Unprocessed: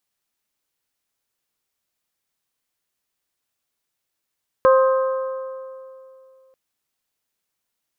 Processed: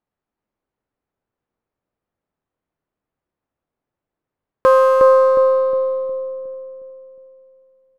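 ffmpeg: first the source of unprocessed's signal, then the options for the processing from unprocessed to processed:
-f lavfi -i "aevalsrc='0.316*pow(10,-3*t/2.62)*sin(2*PI*526*t)+0.158*pow(10,-3*t/2.128)*sin(2*PI*1052*t)+0.0794*pow(10,-3*t/2.015)*sin(2*PI*1262.4*t)+0.0398*pow(10,-3*t/1.884)*sin(2*PI*1578*t)':duration=1.89:sample_rate=44100"
-filter_complex "[0:a]asplit=2[link_01][link_02];[link_02]alimiter=limit=-17dB:level=0:latency=1,volume=2dB[link_03];[link_01][link_03]amix=inputs=2:normalize=0,adynamicsmooth=sensitivity=7:basefreq=1100,asplit=2[link_04][link_05];[link_05]adelay=361,lowpass=frequency=1100:poles=1,volume=-3.5dB,asplit=2[link_06][link_07];[link_07]adelay=361,lowpass=frequency=1100:poles=1,volume=0.51,asplit=2[link_08][link_09];[link_09]adelay=361,lowpass=frequency=1100:poles=1,volume=0.51,asplit=2[link_10][link_11];[link_11]adelay=361,lowpass=frequency=1100:poles=1,volume=0.51,asplit=2[link_12][link_13];[link_13]adelay=361,lowpass=frequency=1100:poles=1,volume=0.51,asplit=2[link_14][link_15];[link_15]adelay=361,lowpass=frequency=1100:poles=1,volume=0.51,asplit=2[link_16][link_17];[link_17]adelay=361,lowpass=frequency=1100:poles=1,volume=0.51[link_18];[link_04][link_06][link_08][link_10][link_12][link_14][link_16][link_18]amix=inputs=8:normalize=0"

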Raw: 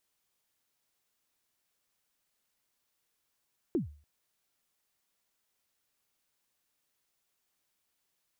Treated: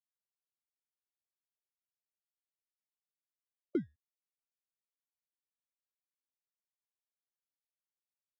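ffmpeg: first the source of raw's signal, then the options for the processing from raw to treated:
-f lavfi -i "aevalsrc='0.0708*pow(10,-3*t/0.41)*sin(2*PI*(390*0.127/log(74/390)*(exp(log(74/390)*min(t,0.127)/0.127)-1)+74*max(t-0.127,0)))':duration=0.29:sample_rate=44100"
-filter_complex "[0:a]afftfilt=real='re*gte(hypot(re,im),0.0224)':imag='im*gte(hypot(re,im),0.0224)':win_size=1024:overlap=0.75,asplit=2[link_01][link_02];[link_02]acrusher=samples=25:mix=1:aa=0.000001,volume=-12dB[link_03];[link_01][link_03]amix=inputs=2:normalize=0,highpass=260,lowpass=2100"

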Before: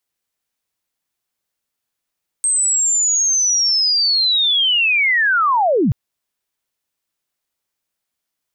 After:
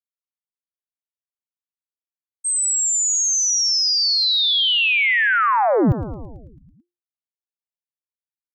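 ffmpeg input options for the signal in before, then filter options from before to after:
-f lavfi -i "aevalsrc='pow(10,(-13.5+1.5*t/3.48)/20)*sin(2*PI*(8400*t-8304*t*t/(2*3.48)))':duration=3.48:sample_rate=44100"
-filter_complex "[0:a]agate=range=-33dB:threshold=-13dB:ratio=3:detection=peak,lowshelf=frequency=150:gain=7,asplit=2[link_01][link_02];[link_02]asplit=8[link_03][link_04][link_05][link_06][link_07][link_08][link_09][link_10];[link_03]adelay=110,afreqshift=-44,volume=-11.5dB[link_11];[link_04]adelay=220,afreqshift=-88,volume=-15.4dB[link_12];[link_05]adelay=330,afreqshift=-132,volume=-19.3dB[link_13];[link_06]adelay=440,afreqshift=-176,volume=-23.1dB[link_14];[link_07]adelay=550,afreqshift=-220,volume=-27dB[link_15];[link_08]adelay=660,afreqshift=-264,volume=-30.9dB[link_16];[link_09]adelay=770,afreqshift=-308,volume=-34.8dB[link_17];[link_10]adelay=880,afreqshift=-352,volume=-38.6dB[link_18];[link_11][link_12][link_13][link_14][link_15][link_16][link_17][link_18]amix=inputs=8:normalize=0[link_19];[link_01][link_19]amix=inputs=2:normalize=0"

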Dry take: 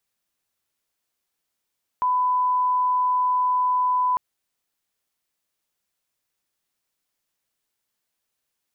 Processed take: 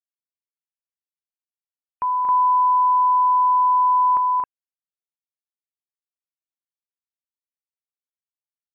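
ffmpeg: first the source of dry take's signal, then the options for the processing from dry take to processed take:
-f lavfi -i "sine=frequency=1000:duration=2.15:sample_rate=44100,volume=0.06dB"
-filter_complex "[0:a]afftfilt=real='re*gte(hypot(re,im),0.00398)':imag='im*gte(hypot(re,im),0.00398)':win_size=1024:overlap=0.75,asplit=2[link_01][link_02];[link_02]aecho=0:1:230.3|268.2:0.501|0.794[link_03];[link_01][link_03]amix=inputs=2:normalize=0"

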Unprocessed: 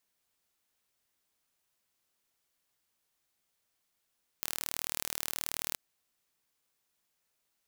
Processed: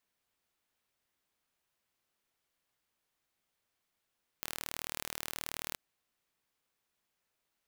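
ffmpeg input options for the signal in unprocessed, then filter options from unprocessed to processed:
-f lavfi -i "aevalsrc='0.447*eq(mod(n,1140),0)':duration=1.33:sample_rate=44100"
-af "bass=frequency=250:gain=0,treble=frequency=4000:gain=-6"

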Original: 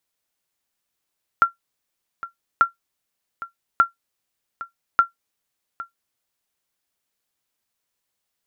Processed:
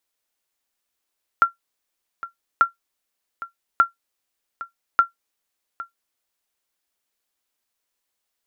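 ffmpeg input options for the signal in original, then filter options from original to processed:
-f lavfi -i "aevalsrc='0.531*(sin(2*PI*1370*mod(t,1.19))*exp(-6.91*mod(t,1.19)/0.13)+0.141*sin(2*PI*1370*max(mod(t,1.19)-0.81,0))*exp(-6.91*max(mod(t,1.19)-0.81,0)/0.13))':duration=4.76:sample_rate=44100"
-af "equalizer=frequency=130:width=1.8:gain=-13.5"

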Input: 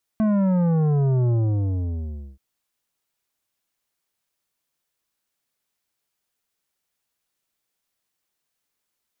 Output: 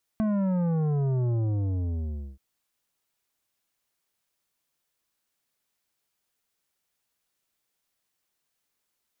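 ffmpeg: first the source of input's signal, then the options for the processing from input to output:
-f lavfi -i "aevalsrc='0.126*clip((2.18-t)/1.08,0,1)*tanh(3.35*sin(2*PI*220*2.18/log(65/220)*(exp(log(65/220)*t/2.18)-1)))/tanh(3.35)':duration=2.18:sample_rate=44100"
-af "acompressor=threshold=-30dB:ratio=2"

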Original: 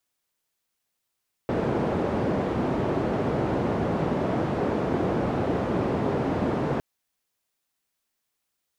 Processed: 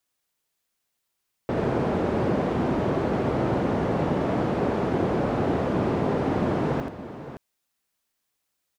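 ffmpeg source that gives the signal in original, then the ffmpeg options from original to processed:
-f lavfi -i "anoisesrc=color=white:duration=5.31:sample_rate=44100:seed=1,highpass=frequency=92,lowpass=frequency=480,volume=-3.6dB"
-af "aecho=1:1:82|569:0.501|0.251"

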